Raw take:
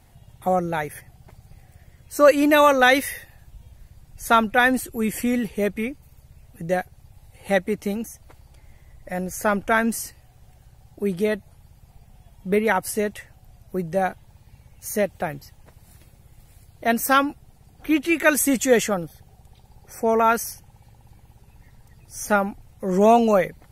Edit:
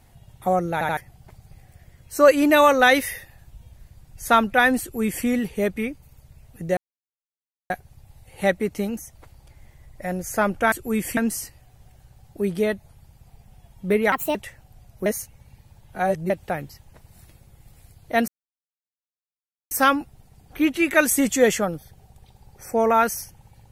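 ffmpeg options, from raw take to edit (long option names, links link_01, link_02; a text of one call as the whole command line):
ffmpeg -i in.wav -filter_complex "[0:a]asplit=12[link_01][link_02][link_03][link_04][link_05][link_06][link_07][link_08][link_09][link_10][link_11][link_12];[link_01]atrim=end=0.812[link_13];[link_02]atrim=start=0.728:end=0.812[link_14];[link_03]atrim=start=0.728:end=0.812[link_15];[link_04]atrim=start=0.968:end=6.77,asetpts=PTS-STARTPTS,afade=type=out:start_time=5.798:duration=0.004:curve=hsin,apad=pad_dur=0.93[link_16];[link_05]atrim=start=6.77:end=9.792,asetpts=PTS-STARTPTS,afade=type=in:duration=0.004:curve=hsin[link_17];[link_06]atrim=start=4.808:end=5.262[link_18];[link_07]atrim=start=9.788:end=12.744[link_19];[link_08]atrim=start=12.74:end=13.07,asetpts=PTS-STARTPTS,asetrate=63504,aresample=44100,atrim=end_sample=10106,asetpts=PTS-STARTPTS[link_20];[link_09]atrim=start=13.066:end=13.782[link_21];[link_10]atrim=start=13.778:end=15.022,asetpts=PTS-STARTPTS,areverse[link_22];[link_11]atrim=start=15.018:end=17,asetpts=PTS-STARTPTS,afade=type=out:start_time=1.978:duration=0.004:curve=hsin,apad=pad_dur=1.43[link_23];[link_12]atrim=start=17,asetpts=PTS-STARTPTS,afade=type=in:duration=0.004:curve=hsin[link_24];[link_13][link_14]acrossfade=duration=0.004:curve1=hsin:curve2=hsin[link_25];[link_25][link_15]acrossfade=duration=0.004:curve1=hsin:curve2=hsin[link_26];[link_16][link_17]concat=n=2:v=0:a=1[link_27];[link_26][link_27]acrossfade=duration=0.004:curve1=hsin:curve2=hsin[link_28];[link_28][link_18]acrossfade=duration=0.004:curve1=hsin:curve2=hsin[link_29];[link_29][link_19]acrossfade=duration=0.004:curve1=hsin:curve2=hsin[link_30];[link_30][link_20]acrossfade=duration=0.004:curve1=hsin:curve2=hsin[link_31];[link_31][link_21]acrossfade=duration=0.004:curve1=hsin:curve2=hsin[link_32];[link_32][link_22]acrossfade=duration=0.004:curve1=hsin:curve2=hsin[link_33];[link_23][link_24]concat=n=2:v=0:a=1[link_34];[link_33][link_34]acrossfade=duration=0.004:curve1=hsin:curve2=hsin" out.wav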